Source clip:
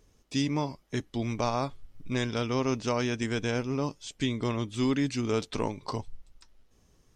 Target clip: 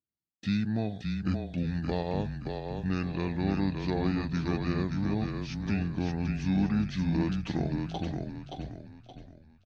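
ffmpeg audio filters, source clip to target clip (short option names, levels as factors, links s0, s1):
-filter_complex "[0:a]highpass=130,equalizer=f=180:t=o:w=2.7:g=8,agate=range=0.0224:threshold=0.00251:ratio=16:detection=peak,asplit=2[s0][s1];[s1]acompressor=threshold=0.0355:ratio=6,volume=0.794[s2];[s0][s2]amix=inputs=2:normalize=0,asplit=6[s3][s4][s5][s6][s7][s8];[s4]adelay=424,afreqshift=-31,volume=0.596[s9];[s5]adelay=848,afreqshift=-62,volume=0.221[s10];[s6]adelay=1272,afreqshift=-93,volume=0.0813[s11];[s7]adelay=1696,afreqshift=-124,volume=0.0302[s12];[s8]adelay=2120,afreqshift=-155,volume=0.0112[s13];[s3][s9][s10][s11][s12][s13]amix=inputs=6:normalize=0,asetrate=32667,aresample=44100,volume=0.376"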